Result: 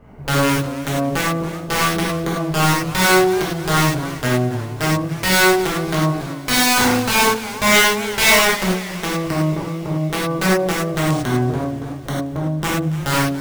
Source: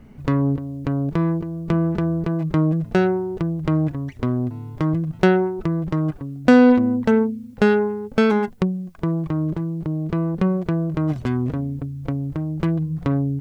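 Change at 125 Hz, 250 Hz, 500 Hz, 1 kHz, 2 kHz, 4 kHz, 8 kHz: 0.0 dB, −1.5 dB, +1.5 dB, +9.5 dB, +12.5 dB, +20.0 dB, can't be measured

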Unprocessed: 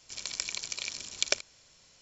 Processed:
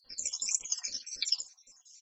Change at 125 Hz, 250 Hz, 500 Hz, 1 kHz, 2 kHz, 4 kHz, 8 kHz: below −10 dB, below −10 dB, below −20 dB, below −10 dB, −11.0 dB, −0.5 dB, can't be measured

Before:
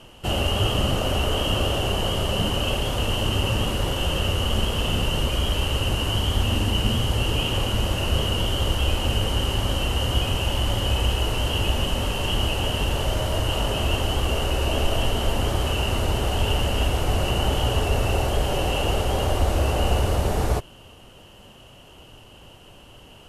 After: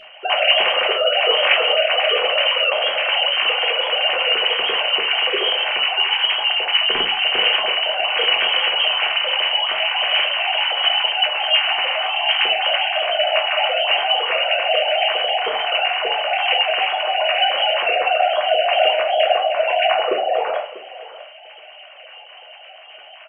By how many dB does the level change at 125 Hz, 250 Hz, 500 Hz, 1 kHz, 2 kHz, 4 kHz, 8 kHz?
below −35 dB, below −15 dB, +7.0 dB, +9.0 dB, +13.0 dB, +10.5 dB, below −40 dB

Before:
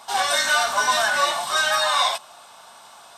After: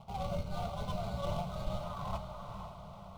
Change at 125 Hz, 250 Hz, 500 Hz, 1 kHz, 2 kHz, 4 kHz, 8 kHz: can't be measured, +4.0 dB, −12.5 dB, −19.0 dB, −33.5 dB, −28.0 dB, −32.0 dB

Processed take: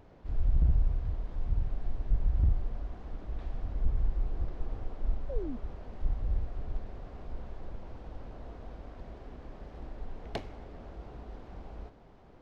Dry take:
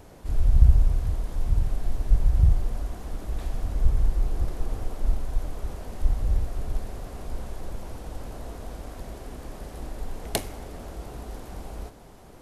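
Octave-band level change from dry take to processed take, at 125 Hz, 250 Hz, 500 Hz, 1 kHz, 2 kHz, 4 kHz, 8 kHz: −8.0 dB, −5.5 dB, −6.0 dB, −8.0 dB, −9.0 dB, −13.0 dB, below −25 dB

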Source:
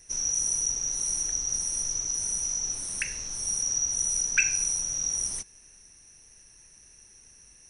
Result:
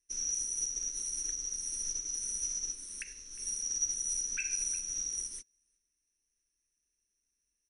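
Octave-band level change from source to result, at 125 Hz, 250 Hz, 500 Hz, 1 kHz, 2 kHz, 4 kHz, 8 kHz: below −10 dB, −9.5 dB, below −10 dB, below −15 dB, −13.5 dB, −7.5 dB, −7.0 dB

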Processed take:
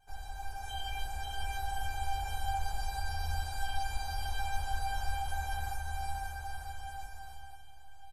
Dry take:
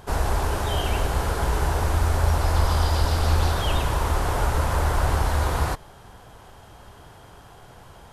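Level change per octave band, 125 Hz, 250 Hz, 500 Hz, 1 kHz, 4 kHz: −18.5, −27.5, −26.0, −9.0, −10.0 decibels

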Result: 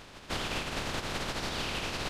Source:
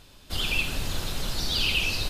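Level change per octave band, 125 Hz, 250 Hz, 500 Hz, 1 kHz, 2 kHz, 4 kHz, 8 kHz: −6.0, −1.0, +1.5, +3.5, −7.0, −9.0, −5.5 decibels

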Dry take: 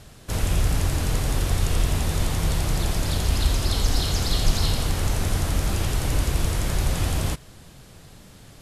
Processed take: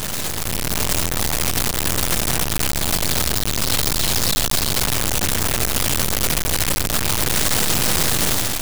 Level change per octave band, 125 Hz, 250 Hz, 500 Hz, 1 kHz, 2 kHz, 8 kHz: −2.5, +4.0, +5.0, +7.0, +9.5, +12.0 decibels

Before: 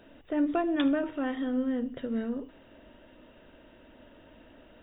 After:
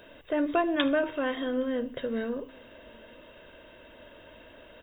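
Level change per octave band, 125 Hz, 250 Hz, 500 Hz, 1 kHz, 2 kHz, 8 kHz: −1.0 dB, −2.0 dB, +5.0 dB, +4.0 dB, +6.5 dB, can't be measured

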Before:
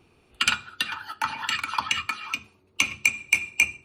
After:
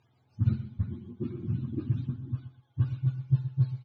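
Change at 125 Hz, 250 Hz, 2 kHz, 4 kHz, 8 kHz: +23.0 dB, +11.0 dB, below −35 dB, below −35 dB, below −40 dB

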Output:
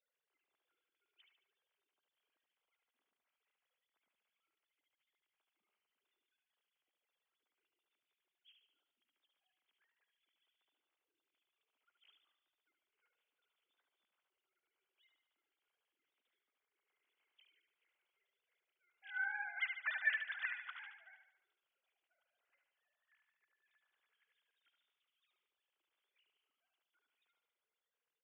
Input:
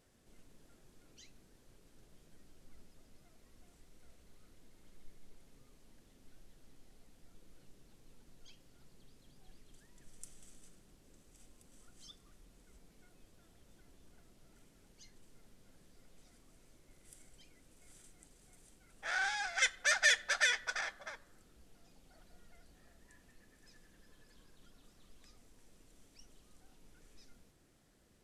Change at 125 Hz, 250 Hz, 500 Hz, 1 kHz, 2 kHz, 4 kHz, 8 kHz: below −35 dB, below −35 dB, below −20 dB, −11.5 dB, −6.5 dB, −17.0 dB, below −35 dB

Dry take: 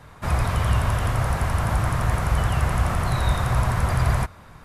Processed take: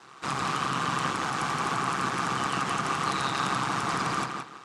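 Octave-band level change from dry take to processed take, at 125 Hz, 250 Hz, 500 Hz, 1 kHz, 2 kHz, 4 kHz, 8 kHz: −16.5, −3.0, −5.5, +1.0, 0.0, +2.5, −0.5 decibels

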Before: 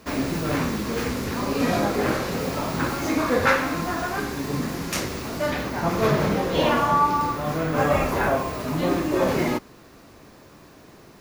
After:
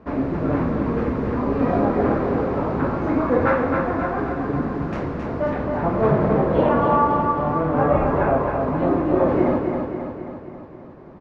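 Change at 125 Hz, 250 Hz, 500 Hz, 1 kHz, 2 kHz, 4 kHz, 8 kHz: +3.5 dB, +4.0 dB, +4.5 dB, +2.0 dB, −3.5 dB, below −15 dB, below −25 dB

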